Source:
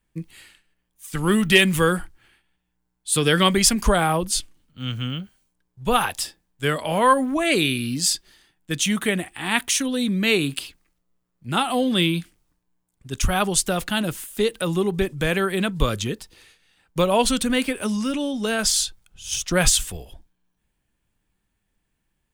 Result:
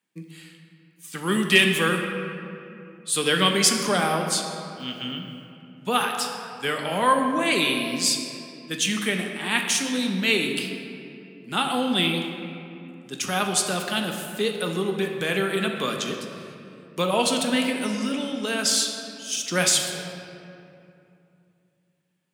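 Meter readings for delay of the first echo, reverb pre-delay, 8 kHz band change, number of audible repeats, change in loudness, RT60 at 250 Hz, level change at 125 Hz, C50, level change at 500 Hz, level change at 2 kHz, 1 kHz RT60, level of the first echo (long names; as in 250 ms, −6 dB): no echo audible, 3 ms, −2.0 dB, no echo audible, −2.0 dB, 3.4 s, −6.0 dB, 4.5 dB, −3.0 dB, −0.5 dB, 2.6 s, no echo audible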